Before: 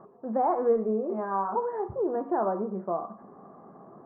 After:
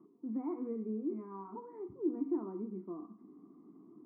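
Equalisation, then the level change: vowel filter u; distance through air 470 m; static phaser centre 2 kHz, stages 4; +8.0 dB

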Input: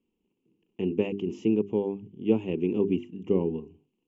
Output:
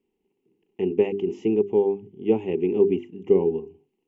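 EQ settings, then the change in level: graphic EQ with 31 bands 400 Hz +11 dB, 800 Hz +11 dB, 2 kHz +10 dB; -1.5 dB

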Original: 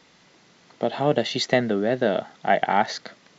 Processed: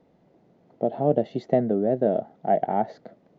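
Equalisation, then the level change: FFT filter 690 Hz 0 dB, 1.1 kHz -15 dB, 5.8 kHz -28 dB; 0.0 dB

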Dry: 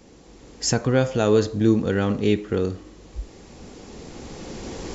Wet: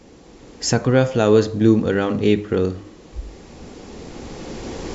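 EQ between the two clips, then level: treble shelf 6.9 kHz -7 dB; hum notches 50/100/150/200 Hz; +4.0 dB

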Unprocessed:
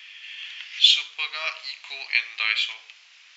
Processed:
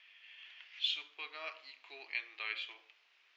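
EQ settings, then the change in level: band-pass filter 330 Hz, Q 3.7; distance through air 96 m; tilt EQ +3.5 dB/octave; +9.0 dB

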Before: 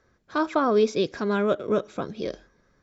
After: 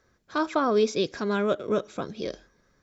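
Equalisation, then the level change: treble shelf 3.7 kHz +6.5 dB; -2.0 dB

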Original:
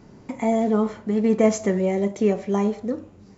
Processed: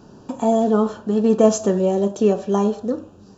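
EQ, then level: Butterworth band-stop 2.1 kHz, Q 2.3; bass shelf 190 Hz -6 dB; +5.0 dB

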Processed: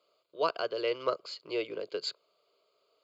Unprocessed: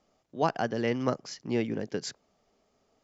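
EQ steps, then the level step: high-pass 380 Hz 12 dB/octave; peaking EQ 4.5 kHz +14 dB 0.32 oct; static phaser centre 1.2 kHz, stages 8; +2.0 dB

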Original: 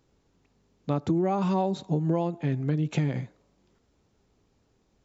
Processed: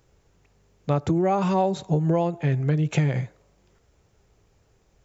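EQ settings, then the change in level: graphic EQ 250/1000/4000 Hz -12/-4/-6 dB; +9.0 dB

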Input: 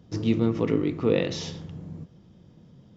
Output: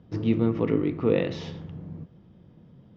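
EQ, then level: low-pass 2.8 kHz 12 dB/octave; 0.0 dB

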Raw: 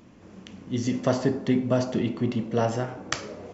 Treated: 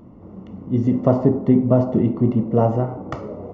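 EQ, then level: Savitzky-Golay filter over 65 samples; bass shelf 200 Hz +5 dB; +6.0 dB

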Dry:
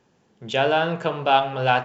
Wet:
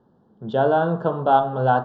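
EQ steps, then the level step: Butterworth band-stop 2.3 kHz, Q 1; distance through air 440 m; peaking EQ 220 Hz +4.5 dB 0.48 oct; +3.5 dB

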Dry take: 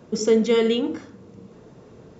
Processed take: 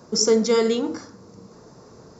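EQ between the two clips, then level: peaking EQ 1.1 kHz +7.5 dB 1.3 oct; resonant high shelf 3.9 kHz +7.5 dB, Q 3; -1.5 dB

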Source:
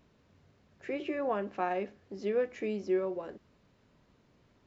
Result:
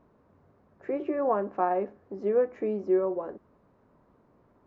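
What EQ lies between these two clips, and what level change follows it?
FFT filter 130 Hz 0 dB, 320 Hz +5 dB, 1.1 kHz +7 dB, 3.1 kHz -14 dB; 0.0 dB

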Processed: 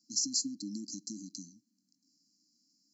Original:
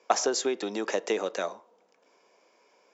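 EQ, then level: brick-wall FIR band-stop 310–4000 Hz; 0.0 dB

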